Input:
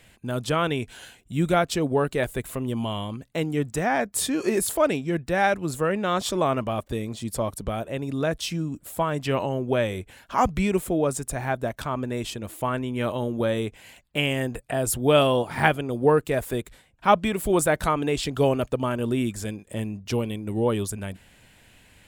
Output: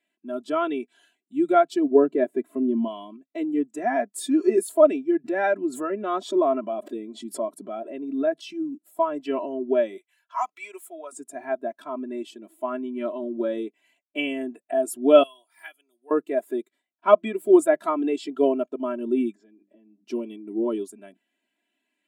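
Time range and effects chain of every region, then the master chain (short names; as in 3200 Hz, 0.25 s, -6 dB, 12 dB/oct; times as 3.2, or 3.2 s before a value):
1.95–2.88 G.711 law mismatch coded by mu + HPF 130 Hz + tilt -2.5 dB/oct
5.24–8.54 high shelf 4500 Hz -4 dB + backwards sustainer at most 62 dB/s
9.97–11.12 HPF 920 Hz + high shelf 6100 Hz +5 dB
15.23–16.11 steep high-pass 160 Hz + differentiator
19.35–20.04 air absorption 170 m + notches 50/100/150/200/250/300/350 Hz + compressor 8:1, threshold -38 dBFS
whole clip: elliptic high-pass 160 Hz, stop band 40 dB; comb 3 ms, depth 99%; spectral expander 1.5:1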